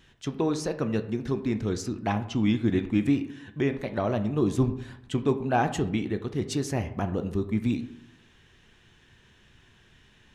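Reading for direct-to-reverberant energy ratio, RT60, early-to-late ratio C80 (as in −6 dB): 8.5 dB, 0.70 s, 15.0 dB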